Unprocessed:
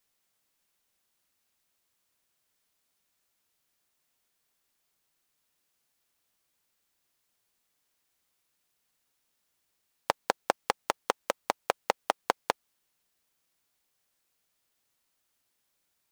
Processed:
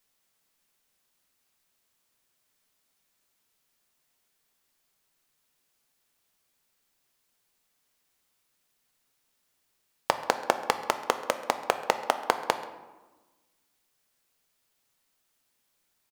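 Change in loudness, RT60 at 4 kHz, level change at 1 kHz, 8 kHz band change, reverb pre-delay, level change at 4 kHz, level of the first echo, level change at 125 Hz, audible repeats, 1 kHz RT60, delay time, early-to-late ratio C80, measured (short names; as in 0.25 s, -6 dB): +3.0 dB, 0.70 s, +3.0 dB, +3.0 dB, 4 ms, +3.0 dB, -20.5 dB, +3.5 dB, 1, 1.2 s, 0.134 s, 12.0 dB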